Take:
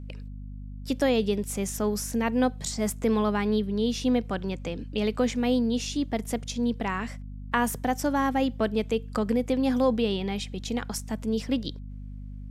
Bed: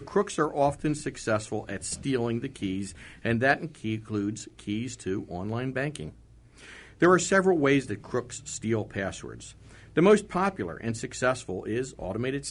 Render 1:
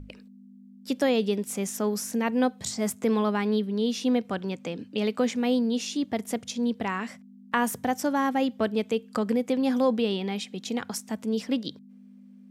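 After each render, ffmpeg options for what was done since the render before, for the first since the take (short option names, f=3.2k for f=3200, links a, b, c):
-af "bandreject=f=50:t=h:w=6,bandreject=f=100:t=h:w=6,bandreject=f=150:t=h:w=6"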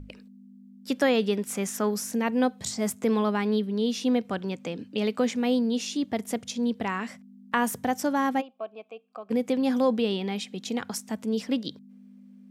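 -filter_complex "[0:a]asettb=1/sr,asplit=3[a][b][c];[a]atrim=end=0.904[d];[b]atrim=start=0.9:end=1.91,asetpts=PTS-STARTPTS,afade=t=in:d=0.004:c=qsin,afade=t=out:st=1.006:d=0.004:c=qsin,equalizer=f=1.5k:w=1:g=6[e];[c]atrim=start=1.906[f];[d][e]acrossfade=d=0.004:c1=hsin:c2=qsin[g];[g][f]acrossfade=d=0.004:c1=qsin:c2=hsin,asplit=3[h][i][j];[h]afade=t=out:st=8.4:d=0.02[k];[i]asplit=3[l][m][n];[l]bandpass=f=730:t=q:w=8,volume=0dB[o];[m]bandpass=f=1.09k:t=q:w=8,volume=-6dB[p];[n]bandpass=f=2.44k:t=q:w=8,volume=-9dB[q];[o][p][q]amix=inputs=3:normalize=0,afade=t=in:st=8.4:d=0.02,afade=t=out:st=9.3:d=0.02[r];[j]afade=t=in:st=9.3:d=0.02[s];[k][r][s]amix=inputs=3:normalize=0"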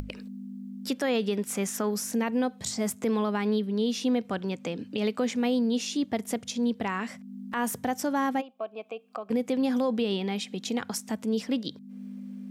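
-af "acompressor=mode=upward:threshold=-29dB:ratio=2.5,alimiter=limit=-18.5dB:level=0:latency=1:release=85"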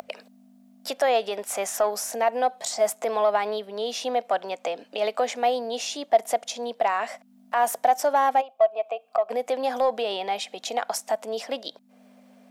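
-filter_complex "[0:a]highpass=f=670:t=q:w=5.7,asplit=2[a][b];[b]asoftclip=type=tanh:threshold=-21.5dB,volume=-8dB[c];[a][c]amix=inputs=2:normalize=0"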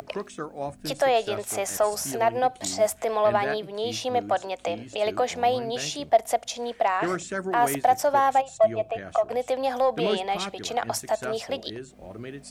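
-filter_complex "[1:a]volume=-8.5dB[a];[0:a][a]amix=inputs=2:normalize=0"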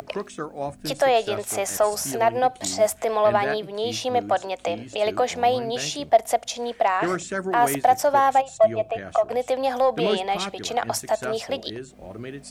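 -af "volume=2.5dB"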